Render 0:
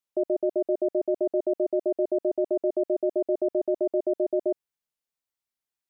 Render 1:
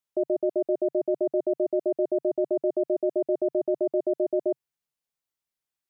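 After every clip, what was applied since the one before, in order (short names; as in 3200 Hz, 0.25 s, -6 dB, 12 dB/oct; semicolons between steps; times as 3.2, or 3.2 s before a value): bell 140 Hz +6 dB 0.48 oct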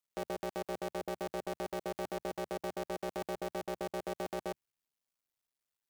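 cycle switcher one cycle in 2, muted; limiter -29 dBFS, peak gain reduction 12 dB; gain +1 dB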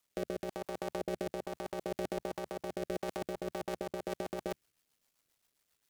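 rotary speaker horn 1.1 Hz, later 7.5 Hz, at 2.81; negative-ratio compressor -46 dBFS, ratio -1; gain +8.5 dB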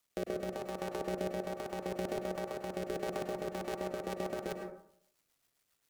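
plate-style reverb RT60 0.66 s, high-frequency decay 0.3×, pre-delay 90 ms, DRR 4 dB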